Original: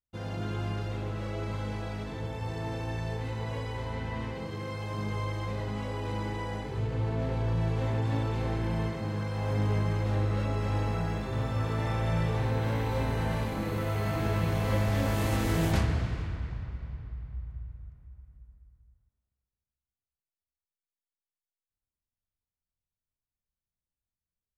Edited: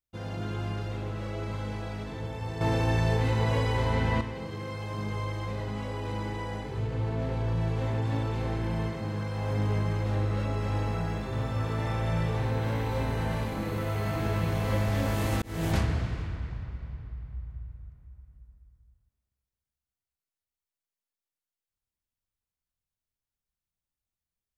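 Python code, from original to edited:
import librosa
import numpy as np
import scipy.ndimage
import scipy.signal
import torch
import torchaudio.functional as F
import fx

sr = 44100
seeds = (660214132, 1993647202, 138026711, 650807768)

y = fx.edit(x, sr, fx.clip_gain(start_s=2.61, length_s=1.6, db=8.5),
    fx.fade_in_span(start_s=15.42, length_s=0.29), tone=tone)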